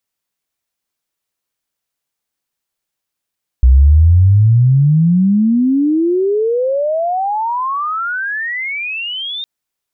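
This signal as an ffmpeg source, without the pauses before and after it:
-f lavfi -i "aevalsrc='pow(10,(-3.5-17*t/5.81)/20)*sin(2*PI*61*5.81/log(3700/61)*(exp(log(3700/61)*t/5.81)-1))':d=5.81:s=44100"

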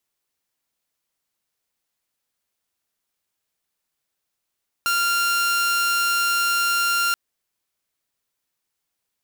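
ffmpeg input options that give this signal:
-f lavfi -i "aevalsrc='0.158*(2*mod(1390*t,1)-1)':d=2.28:s=44100"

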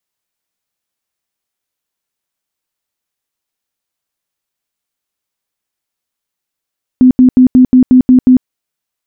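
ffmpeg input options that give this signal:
-f lavfi -i "aevalsrc='0.841*sin(2*PI*254*mod(t,0.18))*lt(mod(t,0.18),25/254)':d=1.44:s=44100"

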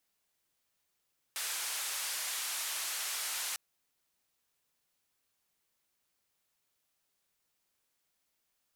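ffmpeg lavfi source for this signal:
-f lavfi -i "anoisesrc=c=white:d=2.2:r=44100:seed=1,highpass=f=920,lowpass=f=12000,volume=-29.2dB"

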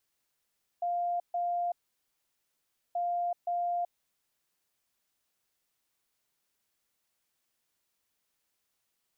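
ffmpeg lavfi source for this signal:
-f lavfi -i "aevalsrc='0.0398*sin(2*PI*700*t)*clip(min(mod(mod(t,2.13),0.52),0.38-mod(mod(t,2.13),0.52))/0.005,0,1)*lt(mod(t,2.13),1.04)':d=4.26:s=44100"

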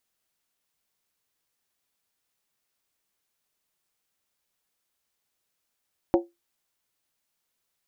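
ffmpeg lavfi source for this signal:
-f lavfi -i "aevalsrc='0.211*pow(10,-3*t/0.2)*sin(2*PI*344*t)+0.119*pow(10,-3*t/0.158)*sin(2*PI*548.3*t)+0.0668*pow(10,-3*t/0.137)*sin(2*PI*734.8*t)+0.0376*pow(10,-3*t/0.132)*sin(2*PI*789.8*t)+0.0211*pow(10,-3*t/0.123)*sin(2*PI*912.6*t)':d=0.63:s=44100"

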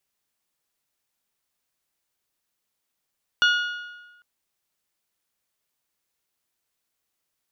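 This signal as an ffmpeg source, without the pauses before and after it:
-f lavfi -i "aevalsrc='0.178*pow(10,-3*t/1.21)*sin(2*PI*1440*t)+0.1*pow(10,-3*t/0.983)*sin(2*PI*2880*t)+0.0562*pow(10,-3*t/0.931)*sin(2*PI*3456*t)+0.0316*pow(10,-3*t/0.87)*sin(2*PI*4320*t)+0.0178*pow(10,-3*t/0.798)*sin(2*PI*5760*t)':d=0.8:s=44100"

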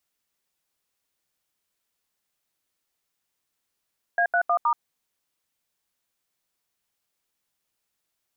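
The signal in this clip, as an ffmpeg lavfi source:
-f lavfi -i "aevalsrc='0.0891*clip(min(mod(t,0.157),0.079-mod(t,0.157))/0.002,0,1)*(eq(floor(t/0.157),0)*(sin(2*PI*697*mod(t,0.157))+sin(2*PI*1633*mod(t,0.157)))+eq(floor(t/0.157),1)*(sin(2*PI*697*mod(t,0.157))+sin(2*PI*1477*mod(t,0.157)))+eq(floor(t/0.157),2)*(sin(2*PI*697*mod(t,0.157))+sin(2*PI*1209*mod(t,0.157)))+eq(floor(t/0.157),3)*(sin(2*PI*941*mod(t,0.157))+sin(2*PI*1209*mod(t,0.157))))':d=0.628:s=44100"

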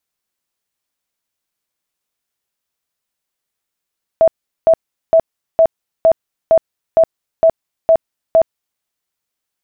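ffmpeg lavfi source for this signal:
-f lavfi -i "aevalsrc='0.531*sin(2*PI*653*mod(t,0.46))*lt(mod(t,0.46),44/653)':d=4.6:s=44100"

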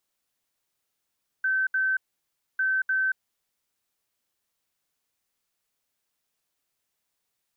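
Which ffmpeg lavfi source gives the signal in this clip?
-f lavfi -i "aevalsrc='0.0841*sin(2*PI*1540*t)*clip(min(mod(mod(t,1.15),0.3),0.23-mod(mod(t,1.15),0.3))/0.005,0,1)*lt(mod(t,1.15),0.6)':d=2.3:s=44100"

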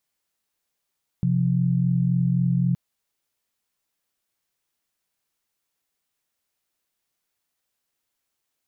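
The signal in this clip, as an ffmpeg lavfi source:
-f lavfi -i "aevalsrc='0.0891*(sin(2*PI*130.81*t)+sin(2*PI*174.61*t))':d=1.52:s=44100"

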